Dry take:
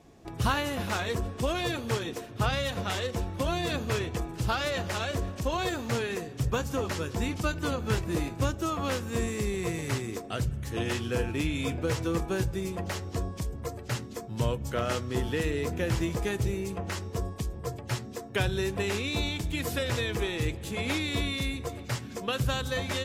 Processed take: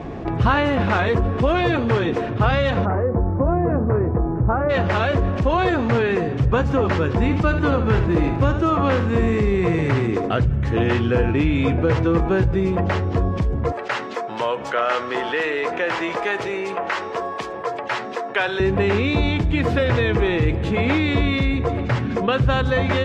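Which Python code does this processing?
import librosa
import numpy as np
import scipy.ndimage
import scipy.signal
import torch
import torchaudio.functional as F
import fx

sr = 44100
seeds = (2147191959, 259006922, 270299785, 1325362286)

y = fx.gaussian_blur(x, sr, sigma=6.9, at=(2.84, 4.69), fade=0.02)
y = fx.echo_single(y, sr, ms=75, db=-12.0, at=(7.14, 10.31))
y = fx.highpass(y, sr, hz=700.0, slope=12, at=(13.72, 18.6))
y = scipy.signal.sosfilt(scipy.signal.butter(2, 2100.0, 'lowpass', fs=sr, output='sos'), y)
y = fx.env_flatten(y, sr, amount_pct=50)
y = y * librosa.db_to_amplitude(8.5)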